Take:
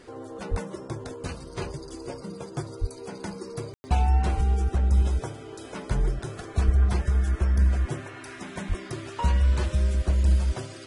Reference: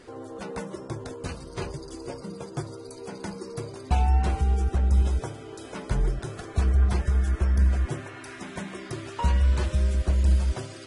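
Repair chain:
high-pass at the plosives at 0:00.50/0:02.80/0:04.36/0:06.65/0:08.68
ambience match 0:03.74–0:03.84

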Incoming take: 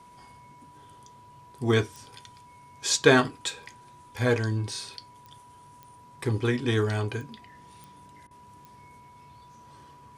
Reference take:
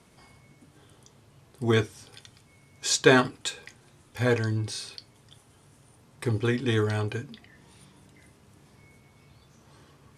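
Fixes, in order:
click removal
notch filter 980 Hz, Q 30
repair the gap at 0:08.27, 38 ms

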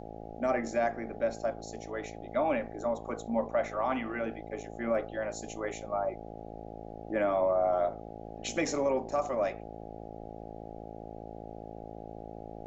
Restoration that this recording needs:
hum removal 54.9 Hz, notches 15
downward expander −36 dBFS, range −21 dB

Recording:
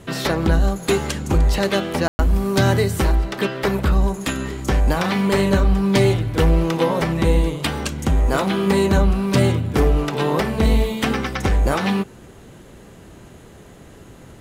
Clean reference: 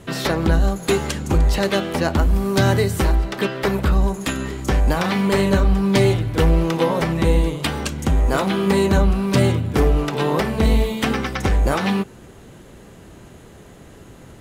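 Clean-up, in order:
ambience match 0:02.08–0:02.19

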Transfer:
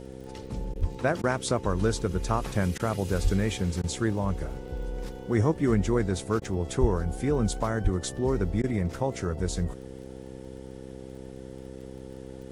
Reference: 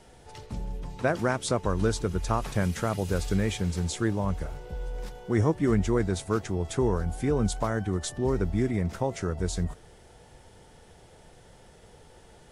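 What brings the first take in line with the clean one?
click removal
hum removal 65.4 Hz, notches 8
high-pass at the plosives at 0:00.80/0:03.23/0:06.80/0:07.83
repair the gap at 0:00.74/0:01.22/0:02.78/0:03.82/0:06.40/0:08.62, 15 ms

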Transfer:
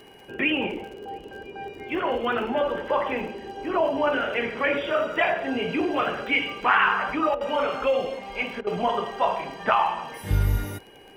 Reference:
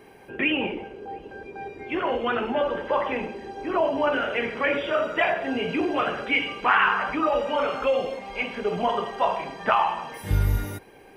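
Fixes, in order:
click removal
notch filter 2,900 Hz, Q 30
repair the gap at 0:07.35/0:08.61, 57 ms

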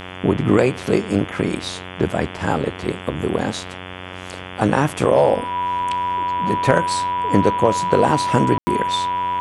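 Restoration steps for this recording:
hum removal 91.7 Hz, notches 38
notch filter 980 Hz, Q 30
ambience match 0:08.58–0:08.67

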